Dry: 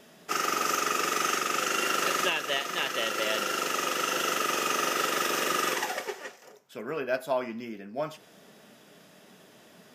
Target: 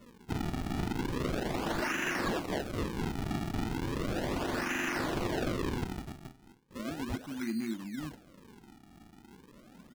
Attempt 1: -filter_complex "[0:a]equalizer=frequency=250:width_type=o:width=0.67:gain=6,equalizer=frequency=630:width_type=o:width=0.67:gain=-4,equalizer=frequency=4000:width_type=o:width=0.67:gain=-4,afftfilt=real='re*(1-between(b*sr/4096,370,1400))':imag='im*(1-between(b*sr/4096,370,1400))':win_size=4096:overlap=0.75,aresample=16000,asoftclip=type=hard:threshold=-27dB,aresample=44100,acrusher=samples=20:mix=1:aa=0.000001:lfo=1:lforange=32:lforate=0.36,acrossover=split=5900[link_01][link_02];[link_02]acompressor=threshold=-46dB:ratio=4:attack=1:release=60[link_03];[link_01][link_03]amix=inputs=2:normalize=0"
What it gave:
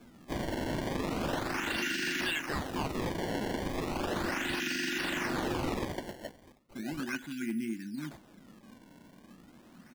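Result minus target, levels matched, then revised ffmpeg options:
sample-and-hold swept by an LFO: distortion −7 dB
-filter_complex "[0:a]equalizer=frequency=250:width_type=o:width=0.67:gain=6,equalizer=frequency=630:width_type=o:width=0.67:gain=-4,equalizer=frequency=4000:width_type=o:width=0.67:gain=-4,afftfilt=real='re*(1-between(b*sr/4096,370,1400))':imag='im*(1-between(b*sr/4096,370,1400))':win_size=4096:overlap=0.75,aresample=16000,asoftclip=type=hard:threshold=-27dB,aresample=44100,acrusher=samples=48:mix=1:aa=0.000001:lfo=1:lforange=76.8:lforate=0.36,acrossover=split=5900[link_01][link_02];[link_02]acompressor=threshold=-46dB:ratio=4:attack=1:release=60[link_03];[link_01][link_03]amix=inputs=2:normalize=0"

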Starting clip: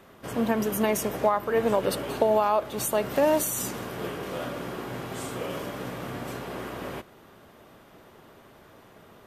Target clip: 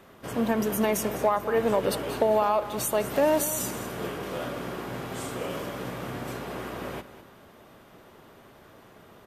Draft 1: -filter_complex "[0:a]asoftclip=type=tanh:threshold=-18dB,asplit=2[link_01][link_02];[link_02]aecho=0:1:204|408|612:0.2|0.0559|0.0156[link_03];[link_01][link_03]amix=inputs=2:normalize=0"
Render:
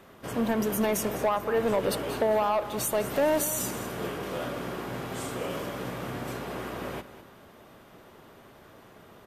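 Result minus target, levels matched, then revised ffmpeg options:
soft clipping: distortion +12 dB
-filter_complex "[0:a]asoftclip=type=tanh:threshold=-10dB,asplit=2[link_01][link_02];[link_02]aecho=0:1:204|408|612:0.2|0.0559|0.0156[link_03];[link_01][link_03]amix=inputs=2:normalize=0"

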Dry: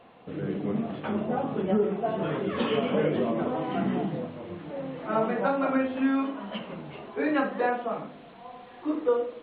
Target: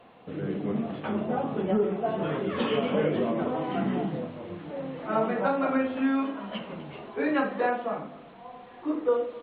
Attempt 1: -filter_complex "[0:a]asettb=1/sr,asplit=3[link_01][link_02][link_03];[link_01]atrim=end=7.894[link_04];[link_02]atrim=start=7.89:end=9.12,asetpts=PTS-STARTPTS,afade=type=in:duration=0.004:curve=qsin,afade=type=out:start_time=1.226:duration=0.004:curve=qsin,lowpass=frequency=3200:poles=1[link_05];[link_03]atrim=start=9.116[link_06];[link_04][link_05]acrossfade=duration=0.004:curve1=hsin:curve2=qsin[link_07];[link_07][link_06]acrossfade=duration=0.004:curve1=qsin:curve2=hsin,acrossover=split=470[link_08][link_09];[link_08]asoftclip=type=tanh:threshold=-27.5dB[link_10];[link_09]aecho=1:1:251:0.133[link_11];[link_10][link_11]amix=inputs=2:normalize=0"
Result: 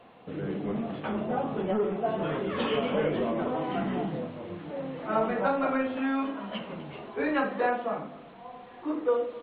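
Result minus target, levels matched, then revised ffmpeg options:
soft clipping: distortion +16 dB
-filter_complex "[0:a]asettb=1/sr,asplit=3[link_01][link_02][link_03];[link_01]atrim=end=7.894[link_04];[link_02]atrim=start=7.89:end=9.12,asetpts=PTS-STARTPTS,afade=type=in:duration=0.004:curve=qsin,afade=type=out:start_time=1.226:duration=0.004:curve=qsin,lowpass=frequency=3200:poles=1[link_05];[link_03]atrim=start=9.116[link_06];[link_04][link_05]acrossfade=duration=0.004:curve1=hsin:curve2=qsin[link_07];[link_07][link_06]acrossfade=duration=0.004:curve1=qsin:curve2=hsin,acrossover=split=470[link_08][link_09];[link_08]asoftclip=type=tanh:threshold=-16dB[link_10];[link_09]aecho=1:1:251:0.133[link_11];[link_10][link_11]amix=inputs=2:normalize=0"

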